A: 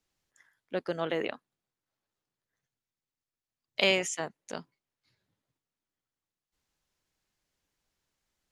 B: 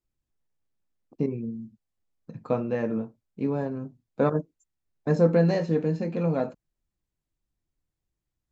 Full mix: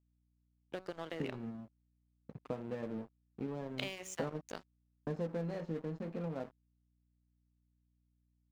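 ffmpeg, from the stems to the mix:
ffmpeg -i stem1.wav -i stem2.wav -filter_complex "[0:a]bandreject=frequency=187.4:width_type=h:width=4,bandreject=frequency=374.8:width_type=h:width=4,bandreject=frequency=562.2:width_type=h:width=4,bandreject=frequency=749.6:width_type=h:width=4,bandreject=frequency=937:width_type=h:width=4,bandreject=frequency=1124.4:width_type=h:width=4,bandreject=frequency=1311.8:width_type=h:width=4,bandreject=frequency=1499.2:width_type=h:width=4,bandreject=frequency=1686.6:width_type=h:width=4,bandreject=frequency=1874:width_type=h:width=4,bandreject=frequency=2061.4:width_type=h:width=4,bandreject=frequency=2248.8:width_type=h:width=4,bandreject=frequency=2436.2:width_type=h:width=4,bandreject=frequency=2623.6:width_type=h:width=4,bandreject=frequency=2811:width_type=h:width=4,bandreject=frequency=2998.4:width_type=h:width=4,bandreject=frequency=3185.8:width_type=h:width=4,bandreject=frequency=3373.2:width_type=h:width=4,bandreject=frequency=3560.6:width_type=h:width=4,bandreject=frequency=3748:width_type=h:width=4,bandreject=frequency=3935.4:width_type=h:width=4,bandreject=frequency=4122.8:width_type=h:width=4,bandreject=frequency=4310.2:width_type=h:width=4,bandreject=frequency=4497.6:width_type=h:width=4,bandreject=frequency=4685:width_type=h:width=4,bandreject=frequency=4872.4:width_type=h:width=4,bandreject=frequency=5059.8:width_type=h:width=4,bandreject=frequency=5247.2:width_type=h:width=4,bandreject=frequency=5434.6:width_type=h:width=4,bandreject=frequency=5622:width_type=h:width=4,acompressor=threshold=-33dB:ratio=12,volume=-3dB[link_01];[1:a]acompressor=threshold=-31dB:ratio=3,highshelf=frequency=2500:gain=-9,volume=-5.5dB[link_02];[link_01][link_02]amix=inputs=2:normalize=0,aeval=exprs='sgn(val(0))*max(abs(val(0))-0.00335,0)':channel_layout=same,aeval=exprs='val(0)+0.000178*(sin(2*PI*60*n/s)+sin(2*PI*2*60*n/s)/2+sin(2*PI*3*60*n/s)/3+sin(2*PI*4*60*n/s)/4+sin(2*PI*5*60*n/s)/5)':channel_layout=same" out.wav

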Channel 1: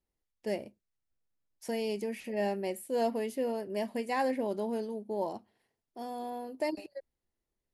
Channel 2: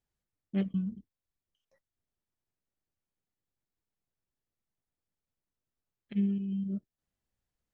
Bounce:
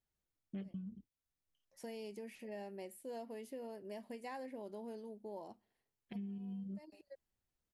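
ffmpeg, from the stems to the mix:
ffmpeg -i stem1.wav -i stem2.wav -filter_complex "[0:a]adelay=150,volume=-10.5dB[link_01];[1:a]volume=-3.5dB,asplit=2[link_02][link_03];[link_03]apad=whole_len=347851[link_04];[link_01][link_04]sidechaincompress=threshold=-48dB:ratio=8:attack=40:release=419[link_05];[link_05][link_02]amix=inputs=2:normalize=0,acompressor=threshold=-43dB:ratio=5" out.wav

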